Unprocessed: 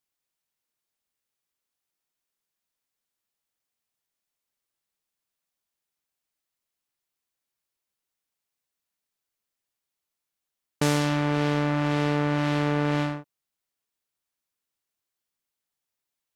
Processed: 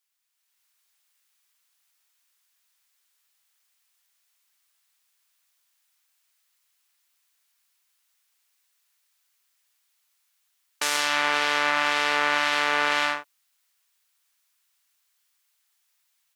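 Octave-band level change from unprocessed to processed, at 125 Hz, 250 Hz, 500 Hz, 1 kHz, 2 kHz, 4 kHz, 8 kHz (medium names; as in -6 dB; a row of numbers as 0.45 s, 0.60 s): -25.5 dB, -14.0 dB, -3.5 dB, +5.5 dB, +10.0 dB, +9.5 dB, +7.0 dB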